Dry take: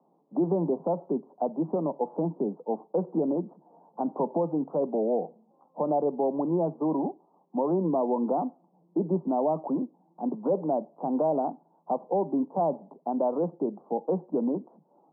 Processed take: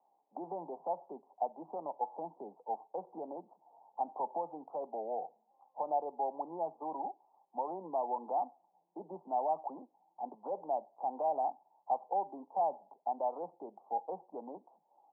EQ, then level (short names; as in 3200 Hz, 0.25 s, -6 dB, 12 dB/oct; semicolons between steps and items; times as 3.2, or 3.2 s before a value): band-pass 810 Hz, Q 5; 0.0 dB